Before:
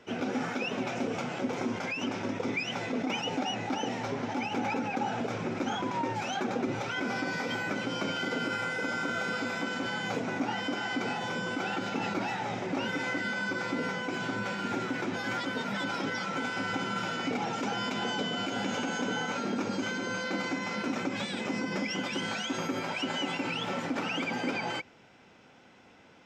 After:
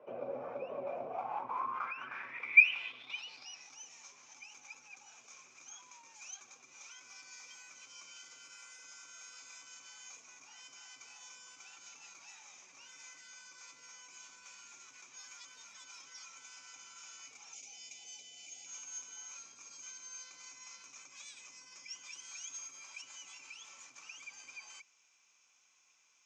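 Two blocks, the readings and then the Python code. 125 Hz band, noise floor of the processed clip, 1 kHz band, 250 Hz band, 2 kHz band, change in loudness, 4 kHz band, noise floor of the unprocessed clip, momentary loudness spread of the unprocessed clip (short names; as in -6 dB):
under -30 dB, -70 dBFS, -13.5 dB, -31.5 dB, -5.0 dB, -4.0 dB, -13.5 dB, -57 dBFS, 2 LU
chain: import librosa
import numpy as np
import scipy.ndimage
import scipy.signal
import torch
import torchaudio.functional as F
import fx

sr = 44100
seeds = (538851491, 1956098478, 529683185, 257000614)

p1 = fx.octave_divider(x, sr, octaves=1, level_db=2.0)
p2 = scipy.signal.sosfilt(scipy.signal.butter(2, 110.0, 'highpass', fs=sr, output='sos'), p1)
p3 = fx.spec_box(p2, sr, start_s=17.54, length_s=1.12, low_hz=860.0, high_hz=2000.0, gain_db=-17)
p4 = fx.over_compress(p3, sr, threshold_db=-39.0, ratio=-1.0)
p5 = p3 + (p4 * 10.0 ** (-2.0 / 20.0))
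p6 = 10.0 ** (-19.5 / 20.0) * (np.abs((p5 / 10.0 ** (-19.5 / 20.0) + 3.0) % 4.0 - 2.0) - 1.0)
p7 = fx.small_body(p6, sr, hz=(1100.0, 2400.0), ring_ms=20, db=14)
y = fx.filter_sweep_bandpass(p7, sr, from_hz=570.0, to_hz=6500.0, start_s=0.89, end_s=3.77, q=7.9)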